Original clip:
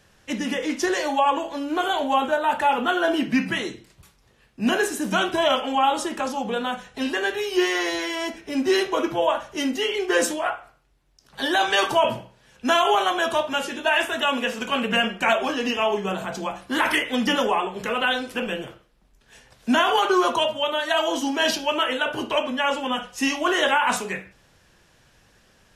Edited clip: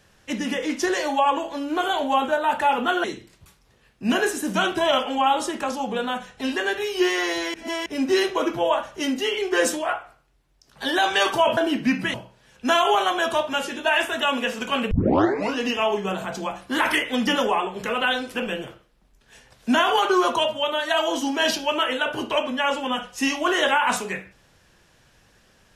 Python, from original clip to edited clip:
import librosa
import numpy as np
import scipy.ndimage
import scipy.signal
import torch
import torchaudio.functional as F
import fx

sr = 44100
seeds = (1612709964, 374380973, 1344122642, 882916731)

y = fx.edit(x, sr, fx.move(start_s=3.04, length_s=0.57, to_s=12.14),
    fx.reverse_span(start_s=8.11, length_s=0.32),
    fx.tape_start(start_s=14.91, length_s=0.67), tone=tone)